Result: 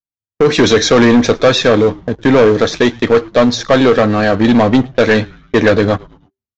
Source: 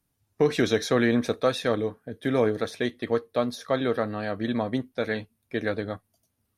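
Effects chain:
noise gate −43 dBFS, range −22 dB
automatic gain control gain up to 14.5 dB
leveller curve on the samples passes 3
downsampling to 16,000 Hz
echo with shifted repeats 108 ms, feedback 44%, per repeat −130 Hz, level −23.5 dB
level −1 dB

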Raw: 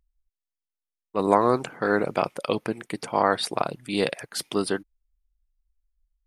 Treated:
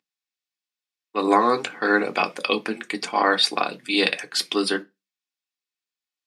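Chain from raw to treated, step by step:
high-pass filter 160 Hz 24 dB per octave
parametric band 4,100 Hz +7.5 dB 1.8 octaves
convolution reverb RT60 0.20 s, pre-delay 3 ms, DRR 5 dB
level −3 dB

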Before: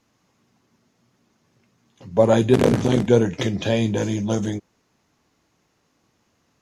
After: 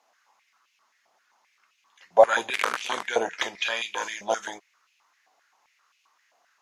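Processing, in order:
high-pass on a step sequencer 7.6 Hz 730–2,600 Hz
level −1.5 dB

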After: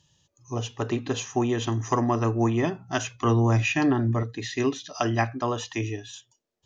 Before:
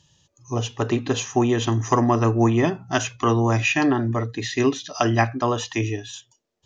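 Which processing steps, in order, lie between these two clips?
0:03.24–0:04.23: low-shelf EQ 230 Hz +7 dB
level −5 dB

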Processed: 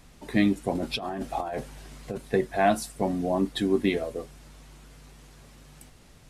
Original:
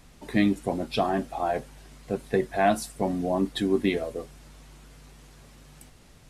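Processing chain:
0:00.75–0:02.18: compressor whose output falls as the input rises −31 dBFS, ratio −1

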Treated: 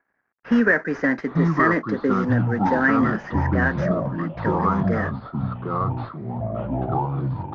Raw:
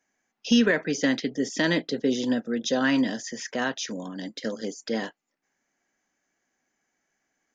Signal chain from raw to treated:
variable-slope delta modulation 32 kbit/s
high shelf with overshoot 2,400 Hz −12.5 dB, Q 3
low-pass that shuts in the quiet parts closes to 2,300 Hz, open at −22.5 dBFS
delay with pitch and tempo change per echo 632 ms, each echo −6 semitones, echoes 3
level +2 dB

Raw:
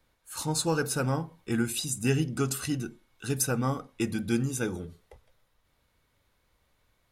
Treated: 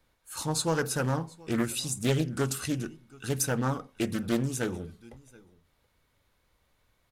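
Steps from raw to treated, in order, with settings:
on a send: single-tap delay 727 ms −24 dB
on the sum: highs frequency-modulated by the lows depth 0.47 ms

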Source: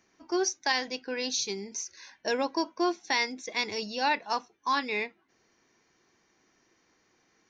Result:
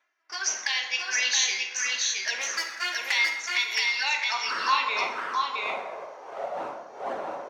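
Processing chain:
0:02.40–0:03.12: lower of the sound and its delayed copy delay 0.44 ms
wind on the microphone 480 Hz −38 dBFS
high-pass filter sweep 1,800 Hz → 660 Hz, 0:03.85–0:06.25
in parallel at +1 dB: brickwall limiter −21 dBFS, peak gain reduction 10 dB
on the sum: flanger swept by the level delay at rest 3.2 ms, full sweep at −21.5 dBFS
0:00.89–0:01.63: double-tracking delay 16 ms −3 dB
single-tap delay 669 ms −3 dB
dense smooth reverb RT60 1.2 s, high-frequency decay 0.55×, DRR 2.5 dB
noise gate with hold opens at −41 dBFS

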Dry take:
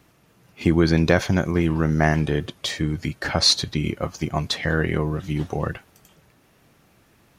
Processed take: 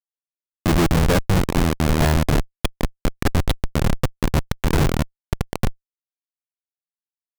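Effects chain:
downsampling to 8,000 Hz
comparator with hysteresis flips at −20 dBFS
level +8.5 dB

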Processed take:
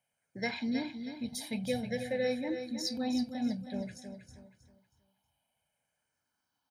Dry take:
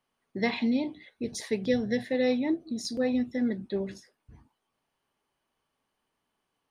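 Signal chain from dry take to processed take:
rippled gain that drifts along the octave scale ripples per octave 0.5, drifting −0.53 Hz, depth 9 dB
high-pass filter 64 Hz
high-shelf EQ 7,700 Hz +9.5 dB
comb filter 1.3 ms, depth 74%
on a send: repeating echo 318 ms, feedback 32%, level −8.5 dB
on the sum: level −7 dB

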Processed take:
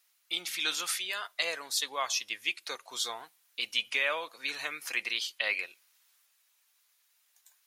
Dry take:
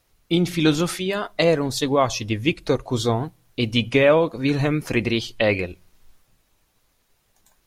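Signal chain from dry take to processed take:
high-pass filter 1,500 Hz 12 dB per octave
high-shelf EQ 7,800 Hz +5 dB
in parallel at −2 dB: brickwall limiter −15.5 dBFS, peak gain reduction 9.5 dB
on the sum: level −8.5 dB

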